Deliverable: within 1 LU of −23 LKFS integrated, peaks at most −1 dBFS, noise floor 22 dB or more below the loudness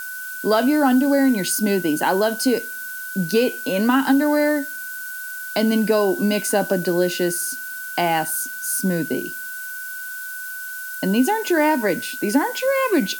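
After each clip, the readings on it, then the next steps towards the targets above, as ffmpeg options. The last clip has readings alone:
interfering tone 1,500 Hz; level of the tone −30 dBFS; background noise floor −32 dBFS; target noise floor −43 dBFS; integrated loudness −21.0 LKFS; sample peak −5.5 dBFS; target loudness −23.0 LKFS
→ -af "bandreject=frequency=1500:width=30"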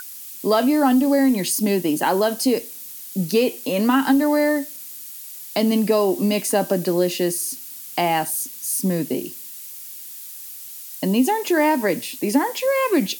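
interfering tone none found; background noise floor −37 dBFS; target noise floor −43 dBFS
→ -af "afftdn=noise_reduction=6:noise_floor=-37"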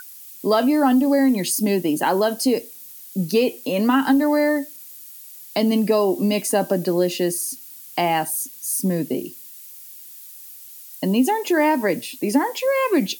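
background noise floor −41 dBFS; target noise floor −43 dBFS
→ -af "afftdn=noise_reduction=6:noise_floor=-41"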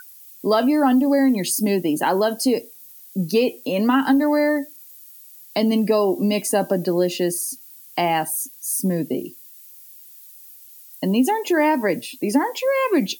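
background noise floor −45 dBFS; integrated loudness −20.5 LKFS; sample peak −6.0 dBFS; target loudness −23.0 LKFS
→ -af "volume=-2.5dB"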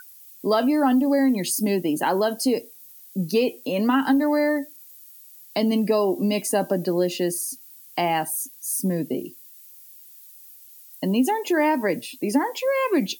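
integrated loudness −23.0 LKFS; sample peak −8.5 dBFS; background noise floor −47 dBFS

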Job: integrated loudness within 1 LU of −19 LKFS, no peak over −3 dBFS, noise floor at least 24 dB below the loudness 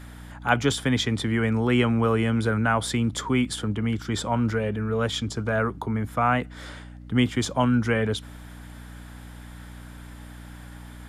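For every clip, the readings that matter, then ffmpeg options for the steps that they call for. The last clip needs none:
mains hum 60 Hz; hum harmonics up to 300 Hz; level of the hum −41 dBFS; integrated loudness −24.5 LKFS; sample peak −6.0 dBFS; target loudness −19.0 LKFS
→ -af "bandreject=frequency=60:width_type=h:width=4,bandreject=frequency=120:width_type=h:width=4,bandreject=frequency=180:width_type=h:width=4,bandreject=frequency=240:width_type=h:width=4,bandreject=frequency=300:width_type=h:width=4"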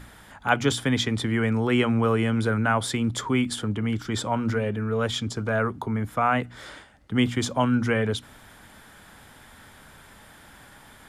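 mains hum none found; integrated loudness −25.0 LKFS; sample peak −7.0 dBFS; target loudness −19.0 LKFS
→ -af "volume=6dB,alimiter=limit=-3dB:level=0:latency=1"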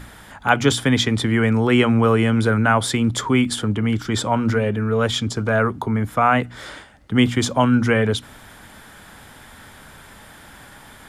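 integrated loudness −19.0 LKFS; sample peak −3.0 dBFS; background noise floor −44 dBFS

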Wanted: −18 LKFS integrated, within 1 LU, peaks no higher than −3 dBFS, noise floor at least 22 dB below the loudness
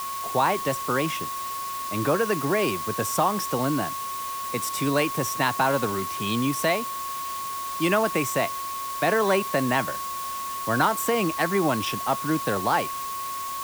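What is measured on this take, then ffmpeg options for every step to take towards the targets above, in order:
interfering tone 1,100 Hz; level of the tone −30 dBFS; background noise floor −32 dBFS; target noise floor −48 dBFS; integrated loudness −25.5 LKFS; sample peak −9.0 dBFS; target loudness −18.0 LKFS
→ -af "bandreject=frequency=1100:width=30"
-af "afftdn=noise_reduction=16:noise_floor=-32"
-af "volume=7.5dB,alimiter=limit=-3dB:level=0:latency=1"

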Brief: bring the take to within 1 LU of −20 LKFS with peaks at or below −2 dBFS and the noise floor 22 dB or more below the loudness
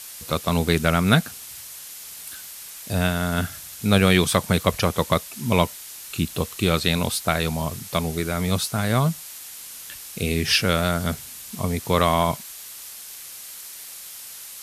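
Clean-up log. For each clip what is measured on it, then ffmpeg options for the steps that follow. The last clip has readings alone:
background noise floor −39 dBFS; target noise floor −45 dBFS; integrated loudness −22.5 LKFS; sample peak −1.0 dBFS; target loudness −20.0 LKFS
→ -af "afftdn=noise_reduction=6:noise_floor=-39"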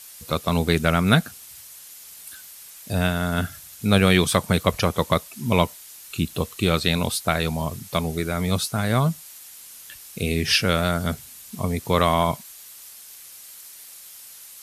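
background noise floor −44 dBFS; target noise floor −45 dBFS
→ -af "afftdn=noise_reduction=6:noise_floor=-44"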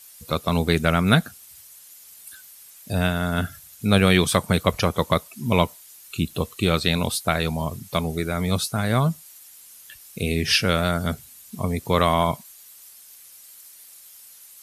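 background noise floor −47 dBFS; integrated loudness −22.5 LKFS; sample peak −1.5 dBFS; target loudness −20.0 LKFS
→ -af "volume=2.5dB,alimiter=limit=-2dB:level=0:latency=1"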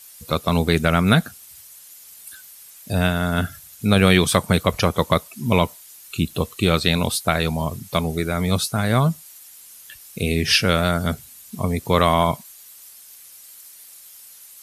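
integrated loudness −20.5 LKFS; sample peak −2.0 dBFS; background noise floor −45 dBFS

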